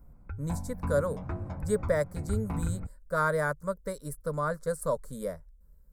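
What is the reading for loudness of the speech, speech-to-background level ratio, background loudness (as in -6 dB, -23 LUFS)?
-32.5 LUFS, 5.0 dB, -37.5 LUFS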